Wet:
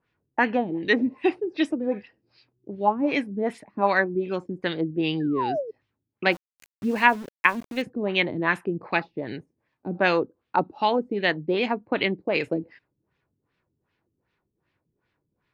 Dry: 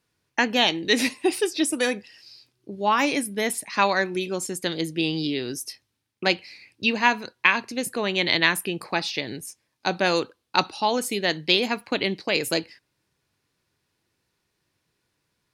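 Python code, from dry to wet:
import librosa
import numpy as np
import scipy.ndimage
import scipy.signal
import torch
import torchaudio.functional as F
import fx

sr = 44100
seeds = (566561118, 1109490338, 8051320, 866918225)

y = fx.spec_paint(x, sr, seeds[0], shape='fall', start_s=5.2, length_s=0.51, low_hz=420.0, high_hz=1800.0, level_db=-28.0)
y = fx.filter_lfo_lowpass(y, sr, shape='sine', hz=2.6, low_hz=260.0, high_hz=2800.0, q=1.4)
y = fx.sample_gate(y, sr, floor_db=-38.5, at=(6.31, 7.81), fade=0.02)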